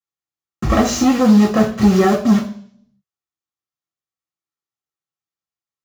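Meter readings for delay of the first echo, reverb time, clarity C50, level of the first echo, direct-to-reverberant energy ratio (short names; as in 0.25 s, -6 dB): none, 0.55 s, 10.0 dB, none, -5.0 dB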